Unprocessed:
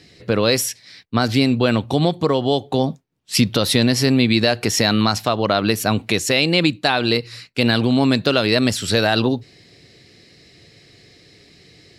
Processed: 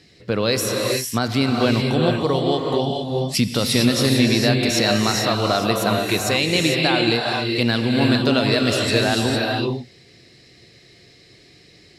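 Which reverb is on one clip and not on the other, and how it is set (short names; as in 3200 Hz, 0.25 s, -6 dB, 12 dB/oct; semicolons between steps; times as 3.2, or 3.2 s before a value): non-linear reverb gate 0.48 s rising, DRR 0 dB; gain -3.5 dB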